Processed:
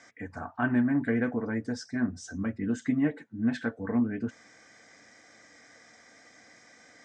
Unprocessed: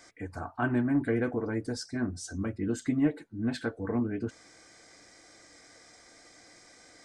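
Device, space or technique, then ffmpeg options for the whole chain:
car door speaker: -af "highpass=100,equalizer=f=230:t=q:w=4:g=6,equalizer=f=350:t=q:w=4:g=-7,equalizer=f=1.8k:t=q:w=4:g=6,equalizer=f=4.4k:t=q:w=4:g=-8,lowpass=f=6.9k:w=0.5412,lowpass=f=6.9k:w=1.3066"

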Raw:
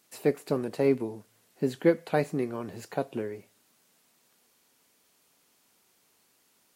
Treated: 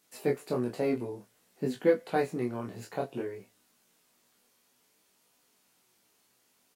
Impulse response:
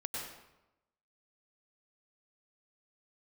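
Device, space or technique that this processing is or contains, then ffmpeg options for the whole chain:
double-tracked vocal: -filter_complex "[0:a]asplit=2[a][b];[b]adelay=16,volume=-6.5dB[c];[a][c]amix=inputs=2:normalize=0,flanger=delay=20:depth=6:speed=0.56"

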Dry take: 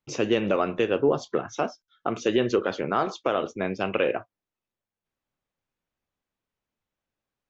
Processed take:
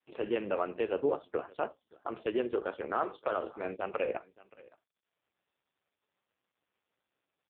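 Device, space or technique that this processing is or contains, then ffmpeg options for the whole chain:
satellite phone: -filter_complex "[0:a]asplit=3[a][b][c];[a]afade=t=out:st=0.72:d=0.02[d];[b]bandreject=f=60:t=h:w=6,bandreject=f=120:t=h:w=6,bandreject=f=180:t=h:w=6,bandreject=f=240:t=h:w=6,bandreject=f=300:t=h:w=6,afade=t=in:st=0.72:d=0.02,afade=t=out:st=1.52:d=0.02[e];[c]afade=t=in:st=1.52:d=0.02[f];[d][e][f]amix=inputs=3:normalize=0,lowshelf=f=300:g=2.5,asettb=1/sr,asplit=3[g][h][i];[g]atrim=end=2.854[j];[h]atrim=start=2.85:end=3.76,asetpts=PTS-STARTPTS,afade=t=in:d=0.004:c=qsin,afade=t=out:st=0.906:d=0.004:c=qsin,asplit=2[k][l];[l]adelay=28,volume=-8dB[m];[k][m]amix=inputs=2:normalize=0,atrim=end_sample=40131[n];[i]atrim=start=3.756[o];[j][n]acrossfade=d=0.004:c1=hsin:c2=qsin[p];[p][o]acrossfade=d=0.004:c1=qsin:c2=hsin,highpass=340,lowpass=3.2k,aecho=1:1:572:0.0708,volume=-6dB" -ar 8000 -c:a libopencore_amrnb -b:a 4750

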